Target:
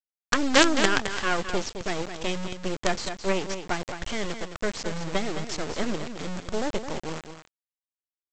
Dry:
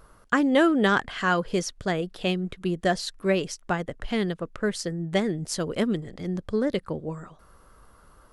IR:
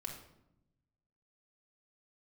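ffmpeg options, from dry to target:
-af "aresample=16000,acrusher=bits=3:dc=4:mix=0:aa=0.000001,aresample=44100,aecho=1:1:214:0.355,volume=1.5dB"

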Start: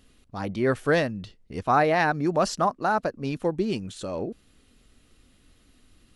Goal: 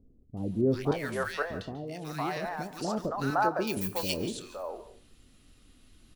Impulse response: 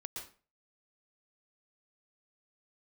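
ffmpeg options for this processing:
-filter_complex "[0:a]acrusher=bits=9:mode=log:mix=0:aa=0.000001,asettb=1/sr,asplit=3[link_01][link_02][link_03];[link_01]atrim=end=0.914[link_04];[link_02]atrim=start=0.91:end=2.77,asetpts=PTS-STARTPTS,afade=type=in:duration=0.004:curve=qsin,afade=type=out:start_time=1.856:duration=0.004:curve=qsin,acrossover=split=640|3400[link_05][link_06][link_07];[link_05]acompressor=threshold=-36dB:ratio=4[link_08];[link_06]acompressor=threshold=-35dB:ratio=4[link_09];[link_07]acompressor=threshold=-45dB:ratio=4[link_10];[link_08][link_09][link_10]amix=inputs=3:normalize=0[link_11];[link_03]atrim=start=2.766[link_12];[link_04][link_11]acrossfade=duration=0.004:curve1=hsin:curve2=qsin[link_13];[link_13][link_12]acrossfade=duration=0.004:curve1=qsin:curve2=hsin,asettb=1/sr,asplit=3[link_14][link_15][link_16];[link_14]atrim=end=3.304[link_17];[link_15]atrim=start=3.3:end=3.77,asetpts=PTS-STARTPTS,afade=type=in:duration=0.004:curve=qsin,afade=type=out:start_time=0.466:duration=0.004:curve=qsin,aemphasis=mode=production:type=riaa[link_18];[link_16]atrim=start=3.766[link_19];[link_17][link_18]acrossfade=duration=0.004:curve1=hsin:curve2=qsin[link_20];[link_20][link_19]acrossfade=duration=0.004:curve1=qsin:curve2=hsin,acrossover=split=530|1700[link_21][link_22][link_23];[link_23]adelay=370[link_24];[link_22]adelay=510[link_25];[link_21][link_25][link_24]amix=inputs=3:normalize=0,asplit=2[link_26][link_27];[1:a]atrim=start_sample=2205,adelay=27[link_28];[link_27][link_28]afir=irnorm=-1:irlink=0,volume=-9dB[link_29];[link_26][link_29]amix=inputs=2:normalize=0"

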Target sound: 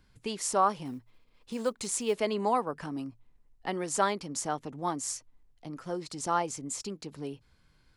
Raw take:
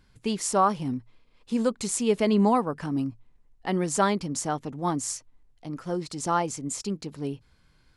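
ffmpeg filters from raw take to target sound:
ffmpeg -i in.wav -filter_complex "[0:a]acrossover=split=340|3100[link_01][link_02][link_03];[link_01]acompressor=threshold=-38dB:ratio=6[link_04];[link_04][link_02][link_03]amix=inputs=3:normalize=0,asettb=1/sr,asplit=3[link_05][link_06][link_07];[link_05]atrim=end=0.854[link_08];[link_06]atrim=start=0.85:end=2.14,asetpts=PTS-STARTPTS,afade=type=in:duration=0.004:curve=qsin,afade=type=out:start_time=1.286:duration=0.004:curve=qsin,acrusher=bits=8:mode=log:mix=0:aa=0.000001[link_09];[link_07]atrim=start=2.136[link_10];[link_08][link_09]acrossfade=duration=0.004:curve1=hsin:curve2=qsin[link_11];[link_11][link_10]acrossfade=duration=0.004:curve1=qsin:curve2=hsin,volume=-3dB" out.wav

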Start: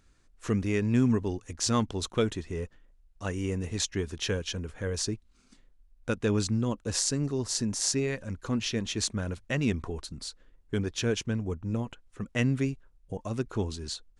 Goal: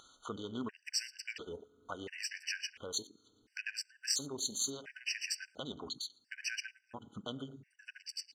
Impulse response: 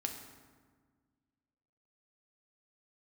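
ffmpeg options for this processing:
-filter_complex "[0:a]lowpass=3300,aderivative,asplit=2[link_01][link_02];[link_02]adelay=192.4,volume=-16dB,highshelf=frequency=4000:gain=-4.33[link_03];[link_01][link_03]amix=inputs=2:normalize=0,asplit=2[link_04][link_05];[1:a]atrim=start_sample=2205,highshelf=frequency=7300:gain=8[link_06];[link_05][link_06]afir=irnorm=-1:irlink=0,volume=-5dB[link_07];[link_04][link_07]amix=inputs=2:normalize=0,acontrast=52,afwtdn=0.00316,acompressor=mode=upward:threshold=-36dB:ratio=2.5,atempo=1.7,afftfilt=real='re*gt(sin(2*PI*0.72*pts/sr)*(1-2*mod(floor(b*sr/1024/1500),2)),0)':imag='im*gt(sin(2*PI*0.72*pts/sr)*(1-2*mod(floor(b*sr/1024/1500),2)),0)':win_size=1024:overlap=0.75,volume=2.5dB"

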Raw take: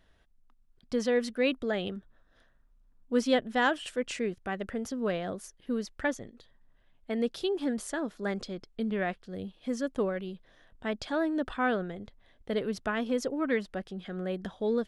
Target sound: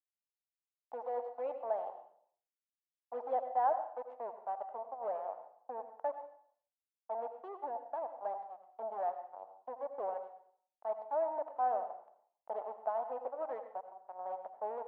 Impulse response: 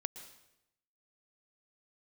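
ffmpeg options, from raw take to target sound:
-filter_complex "[0:a]asplit=2[link_01][link_02];[link_02]acompressor=mode=upward:threshold=-33dB:ratio=2.5,volume=-0.5dB[link_03];[link_01][link_03]amix=inputs=2:normalize=0,acrusher=bits=3:mix=0:aa=0.5,asuperpass=centerf=750:order=4:qfactor=2.5[link_04];[1:a]atrim=start_sample=2205,asetrate=61740,aresample=44100[link_05];[link_04][link_05]afir=irnorm=-1:irlink=0"

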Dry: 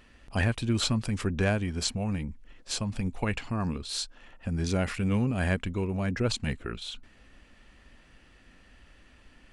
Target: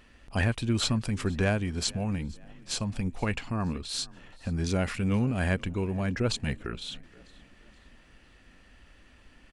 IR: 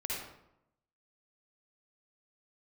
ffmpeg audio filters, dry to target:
-filter_complex "[0:a]asplit=4[link_01][link_02][link_03][link_04];[link_02]adelay=474,afreqshift=33,volume=-24dB[link_05];[link_03]adelay=948,afreqshift=66,volume=-30.9dB[link_06];[link_04]adelay=1422,afreqshift=99,volume=-37.9dB[link_07];[link_01][link_05][link_06][link_07]amix=inputs=4:normalize=0"

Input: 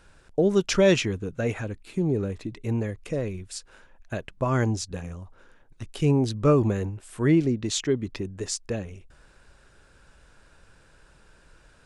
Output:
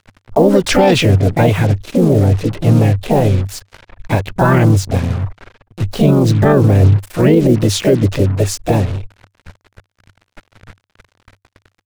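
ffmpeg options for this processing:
ffmpeg -i in.wav -filter_complex "[0:a]lowpass=frequency=2300:poles=1,asplit=4[link_01][link_02][link_03][link_04];[link_02]asetrate=55563,aresample=44100,atempo=0.793701,volume=-14dB[link_05];[link_03]asetrate=58866,aresample=44100,atempo=0.749154,volume=-5dB[link_06];[link_04]asetrate=66075,aresample=44100,atempo=0.66742,volume=-6dB[link_07];[link_01][link_05][link_06][link_07]amix=inputs=4:normalize=0,acrusher=bits=6:mix=0:aa=0.5,equalizer=frequency=98:width=4.2:gain=11,alimiter=level_in=15dB:limit=-1dB:release=50:level=0:latency=1,volume=-1dB" out.wav

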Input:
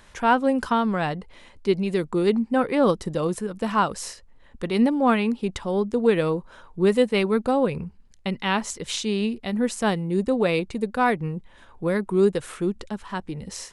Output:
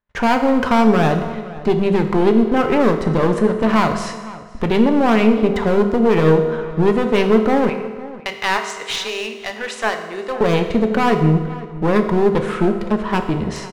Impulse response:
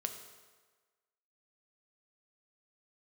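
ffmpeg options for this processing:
-filter_complex "[0:a]lowpass=1800,agate=range=-47dB:threshold=-46dB:ratio=16:detection=peak,asettb=1/sr,asplit=3[link_01][link_02][link_03];[link_01]atrim=end=7.694[link_04];[link_02]atrim=start=7.69:end=10.41,asetpts=PTS-STARTPTS,afade=type=in:duration=0.004:curve=qsin,afade=type=out:start_time=2.716:duration=0.004:curve=qsin,highpass=1100[link_05];[link_03]atrim=start=10.406[link_06];[link_04][link_05]acrossfade=duration=0.004:curve1=hsin:curve2=qsin[link_07];[link_07][link_06]acrossfade=duration=0.004:curve1=qsin:curve2=hsin,acontrast=71,alimiter=limit=-14dB:level=0:latency=1:release=164,crystalizer=i=2.5:c=0,aeval=exprs='clip(val(0),-1,0.0355)':channel_layout=same,asplit=2[link_08][link_09];[link_09]adelay=507.3,volume=-17dB,highshelf=frequency=4000:gain=-11.4[link_10];[link_08][link_10]amix=inputs=2:normalize=0[link_11];[1:a]atrim=start_sample=2205[link_12];[link_11][link_12]afir=irnorm=-1:irlink=0,volume=8.5dB"

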